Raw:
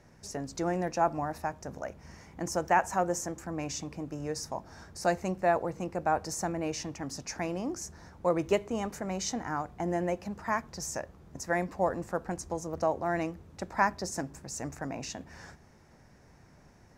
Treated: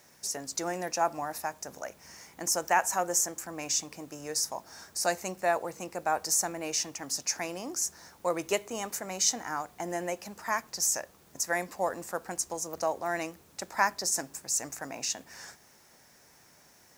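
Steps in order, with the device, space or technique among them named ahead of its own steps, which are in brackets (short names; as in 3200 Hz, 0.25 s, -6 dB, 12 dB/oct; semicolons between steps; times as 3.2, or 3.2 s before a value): turntable without a phono preamp (RIAA curve recording; white noise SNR 33 dB)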